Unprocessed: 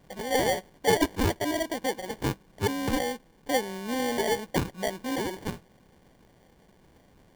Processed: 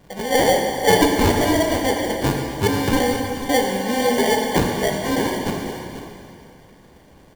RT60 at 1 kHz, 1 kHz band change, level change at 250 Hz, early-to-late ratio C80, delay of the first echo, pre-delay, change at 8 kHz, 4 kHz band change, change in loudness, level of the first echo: 2.5 s, +10.0 dB, +10.0 dB, 3.5 dB, 0.491 s, 6 ms, +9.5 dB, +9.5 dB, +9.5 dB, -12.0 dB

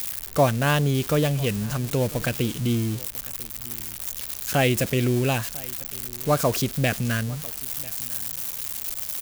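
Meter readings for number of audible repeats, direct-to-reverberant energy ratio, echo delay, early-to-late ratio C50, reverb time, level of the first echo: 1, none, 0.996 s, none, none, -22.0 dB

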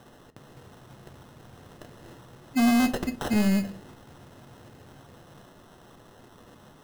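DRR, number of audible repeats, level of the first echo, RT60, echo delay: 9.5 dB, none, none, 0.50 s, none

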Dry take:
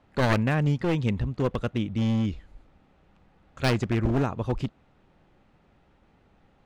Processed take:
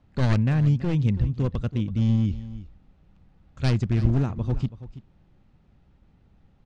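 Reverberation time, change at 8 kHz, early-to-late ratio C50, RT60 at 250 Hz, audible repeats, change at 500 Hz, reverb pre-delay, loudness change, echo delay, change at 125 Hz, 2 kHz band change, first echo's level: none, n/a, none, none, 1, -5.5 dB, none, +2.0 dB, 0.329 s, +5.0 dB, -6.5 dB, -15.5 dB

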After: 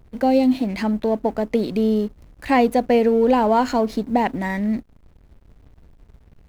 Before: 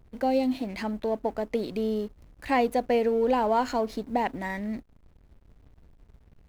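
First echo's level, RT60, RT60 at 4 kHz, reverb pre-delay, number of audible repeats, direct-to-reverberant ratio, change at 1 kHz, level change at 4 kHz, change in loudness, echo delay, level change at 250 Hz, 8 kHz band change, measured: none, none, none, none, none, none, +6.0 dB, +6.0 dB, +7.5 dB, none, +10.0 dB, n/a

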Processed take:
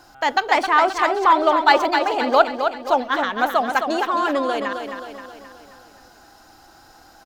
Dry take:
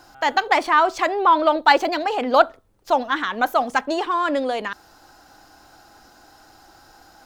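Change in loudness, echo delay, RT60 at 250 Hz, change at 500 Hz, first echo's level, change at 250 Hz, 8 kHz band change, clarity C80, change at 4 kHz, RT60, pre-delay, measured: +1.0 dB, 0.264 s, none, +1.0 dB, -7.0 dB, +1.0 dB, +1.0 dB, none, +1.0 dB, none, none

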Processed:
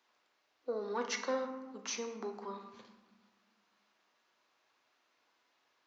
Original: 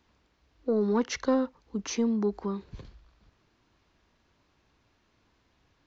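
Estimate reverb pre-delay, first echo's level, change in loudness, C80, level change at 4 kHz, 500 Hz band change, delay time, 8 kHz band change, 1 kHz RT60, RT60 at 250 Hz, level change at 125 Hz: 8 ms, none, -10.0 dB, 10.5 dB, -3.0 dB, -8.5 dB, none, n/a, 1.2 s, 2.3 s, under -20 dB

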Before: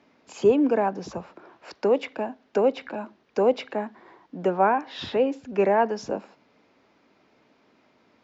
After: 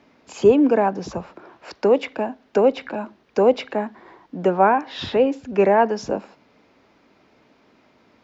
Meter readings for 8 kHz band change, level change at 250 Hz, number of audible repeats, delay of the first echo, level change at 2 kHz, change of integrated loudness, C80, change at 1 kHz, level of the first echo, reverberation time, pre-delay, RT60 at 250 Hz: n/a, +5.0 dB, none, none, +4.5 dB, +5.0 dB, none, +4.5 dB, none, none, none, none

